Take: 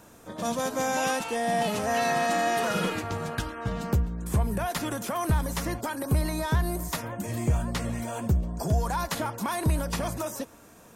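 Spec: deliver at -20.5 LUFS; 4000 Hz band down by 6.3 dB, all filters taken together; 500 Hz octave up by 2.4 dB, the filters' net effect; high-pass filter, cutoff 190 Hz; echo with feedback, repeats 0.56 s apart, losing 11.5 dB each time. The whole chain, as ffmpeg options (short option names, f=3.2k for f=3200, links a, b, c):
-af "highpass=190,equalizer=f=500:t=o:g=3.5,equalizer=f=4k:t=o:g=-8.5,aecho=1:1:560|1120|1680:0.266|0.0718|0.0194,volume=8.5dB"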